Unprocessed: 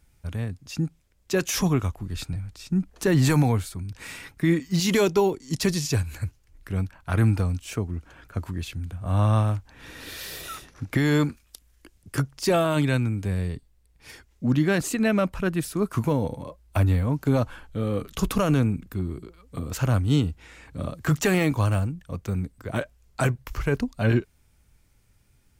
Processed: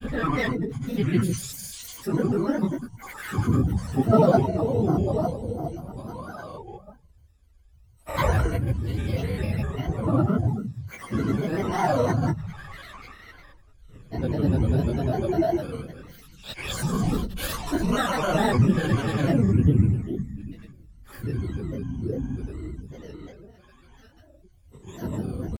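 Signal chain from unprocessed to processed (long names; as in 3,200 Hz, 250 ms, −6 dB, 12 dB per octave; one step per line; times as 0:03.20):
EQ curve with evenly spaced ripples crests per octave 1.9, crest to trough 12 dB
extreme stretch with random phases 6×, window 0.05 s, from 0:15.40
granular cloud, grains 20 per second, pitch spread up and down by 7 semitones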